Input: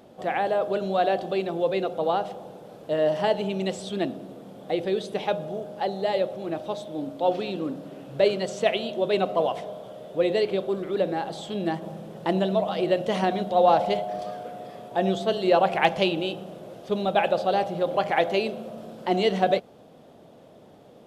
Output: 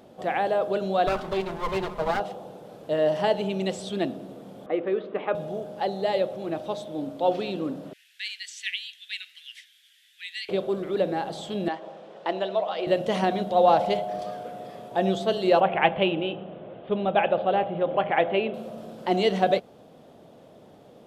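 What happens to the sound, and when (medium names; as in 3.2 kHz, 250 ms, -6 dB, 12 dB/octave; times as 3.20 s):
1.07–2.20 s: comb filter that takes the minimum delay 4.8 ms
4.66–5.35 s: cabinet simulation 260–2400 Hz, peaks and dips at 290 Hz +5 dB, 800 Hz -5 dB, 1.2 kHz +8 dB
7.93–10.49 s: steep high-pass 1.7 kHz 72 dB/octave
11.68–12.87 s: band-pass 470–4500 Hz
15.60–18.54 s: steep low-pass 3.3 kHz 48 dB/octave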